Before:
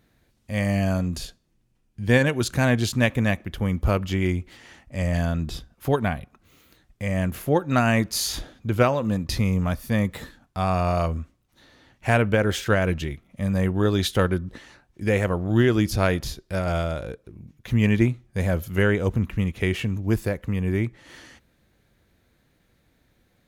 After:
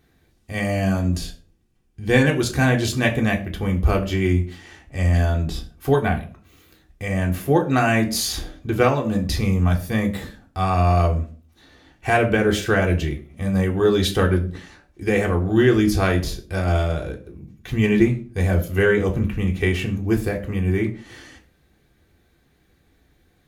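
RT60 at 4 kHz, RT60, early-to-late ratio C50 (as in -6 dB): 0.30 s, 0.40 s, 13.5 dB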